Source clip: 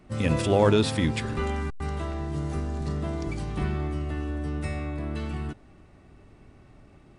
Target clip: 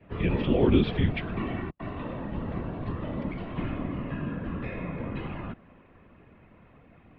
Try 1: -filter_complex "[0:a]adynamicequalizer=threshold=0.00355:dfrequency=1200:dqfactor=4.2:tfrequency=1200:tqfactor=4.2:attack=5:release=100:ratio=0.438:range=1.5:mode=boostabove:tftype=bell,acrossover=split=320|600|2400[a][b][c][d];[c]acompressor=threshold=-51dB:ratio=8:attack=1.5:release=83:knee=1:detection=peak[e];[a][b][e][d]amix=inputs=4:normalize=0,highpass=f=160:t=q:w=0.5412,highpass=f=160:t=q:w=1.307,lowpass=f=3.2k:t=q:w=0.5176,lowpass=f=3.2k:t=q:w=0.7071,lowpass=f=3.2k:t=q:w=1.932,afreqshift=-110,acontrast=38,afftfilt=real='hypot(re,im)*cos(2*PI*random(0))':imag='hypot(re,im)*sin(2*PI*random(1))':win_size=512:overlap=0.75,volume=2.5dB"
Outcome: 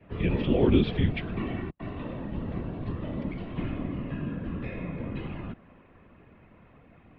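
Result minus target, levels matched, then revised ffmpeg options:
compressor: peak gain reduction +6.5 dB
-filter_complex "[0:a]adynamicequalizer=threshold=0.00355:dfrequency=1200:dqfactor=4.2:tfrequency=1200:tqfactor=4.2:attack=5:release=100:ratio=0.438:range=1.5:mode=boostabove:tftype=bell,acrossover=split=320|600|2400[a][b][c][d];[c]acompressor=threshold=-43.5dB:ratio=8:attack=1.5:release=83:knee=1:detection=peak[e];[a][b][e][d]amix=inputs=4:normalize=0,highpass=f=160:t=q:w=0.5412,highpass=f=160:t=q:w=1.307,lowpass=f=3.2k:t=q:w=0.5176,lowpass=f=3.2k:t=q:w=0.7071,lowpass=f=3.2k:t=q:w=1.932,afreqshift=-110,acontrast=38,afftfilt=real='hypot(re,im)*cos(2*PI*random(0))':imag='hypot(re,im)*sin(2*PI*random(1))':win_size=512:overlap=0.75,volume=2.5dB"

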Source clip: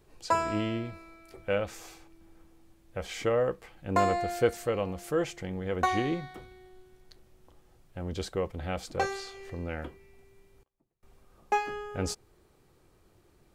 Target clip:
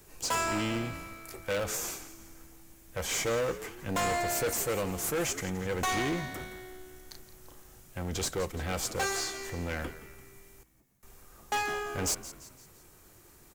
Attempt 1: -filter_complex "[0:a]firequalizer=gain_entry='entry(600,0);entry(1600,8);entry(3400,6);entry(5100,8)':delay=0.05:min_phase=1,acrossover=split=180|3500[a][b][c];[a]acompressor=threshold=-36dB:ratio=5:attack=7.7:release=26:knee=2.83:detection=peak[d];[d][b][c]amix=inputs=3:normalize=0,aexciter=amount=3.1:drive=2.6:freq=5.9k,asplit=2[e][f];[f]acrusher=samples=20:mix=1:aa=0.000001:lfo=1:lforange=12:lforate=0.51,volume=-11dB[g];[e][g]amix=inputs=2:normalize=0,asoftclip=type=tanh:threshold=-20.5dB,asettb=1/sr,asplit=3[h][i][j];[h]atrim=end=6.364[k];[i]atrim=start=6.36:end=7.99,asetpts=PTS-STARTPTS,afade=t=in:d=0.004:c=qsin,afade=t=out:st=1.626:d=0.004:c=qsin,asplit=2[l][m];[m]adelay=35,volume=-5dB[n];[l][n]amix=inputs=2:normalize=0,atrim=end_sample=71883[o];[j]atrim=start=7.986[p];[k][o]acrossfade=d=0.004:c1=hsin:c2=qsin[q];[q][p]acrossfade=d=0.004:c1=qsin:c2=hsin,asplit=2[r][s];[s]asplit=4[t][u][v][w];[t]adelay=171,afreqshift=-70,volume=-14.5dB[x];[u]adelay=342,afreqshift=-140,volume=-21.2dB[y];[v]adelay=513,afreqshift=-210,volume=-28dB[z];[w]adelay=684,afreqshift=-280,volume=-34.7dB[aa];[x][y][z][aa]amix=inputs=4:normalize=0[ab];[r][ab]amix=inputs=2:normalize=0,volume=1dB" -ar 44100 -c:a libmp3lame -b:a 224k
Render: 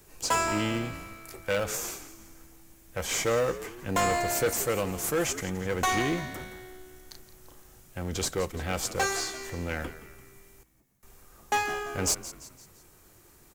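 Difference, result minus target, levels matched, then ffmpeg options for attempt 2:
soft clip: distortion -5 dB
-filter_complex "[0:a]firequalizer=gain_entry='entry(600,0);entry(1600,8);entry(3400,6);entry(5100,8)':delay=0.05:min_phase=1,acrossover=split=180|3500[a][b][c];[a]acompressor=threshold=-36dB:ratio=5:attack=7.7:release=26:knee=2.83:detection=peak[d];[d][b][c]amix=inputs=3:normalize=0,aexciter=amount=3.1:drive=2.6:freq=5.9k,asplit=2[e][f];[f]acrusher=samples=20:mix=1:aa=0.000001:lfo=1:lforange=12:lforate=0.51,volume=-11dB[g];[e][g]amix=inputs=2:normalize=0,asoftclip=type=tanh:threshold=-27dB,asettb=1/sr,asplit=3[h][i][j];[h]atrim=end=6.364[k];[i]atrim=start=6.36:end=7.99,asetpts=PTS-STARTPTS,afade=t=in:d=0.004:c=qsin,afade=t=out:st=1.626:d=0.004:c=qsin,asplit=2[l][m];[m]adelay=35,volume=-5dB[n];[l][n]amix=inputs=2:normalize=0,atrim=end_sample=71883[o];[j]atrim=start=7.986[p];[k][o]acrossfade=d=0.004:c1=hsin:c2=qsin[q];[q][p]acrossfade=d=0.004:c1=qsin:c2=hsin,asplit=2[r][s];[s]asplit=4[t][u][v][w];[t]adelay=171,afreqshift=-70,volume=-14.5dB[x];[u]adelay=342,afreqshift=-140,volume=-21.2dB[y];[v]adelay=513,afreqshift=-210,volume=-28dB[z];[w]adelay=684,afreqshift=-280,volume=-34.7dB[aa];[x][y][z][aa]amix=inputs=4:normalize=0[ab];[r][ab]amix=inputs=2:normalize=0,volume=1dB" -ar 44100 -c:a libmp3lame -b:a 224k

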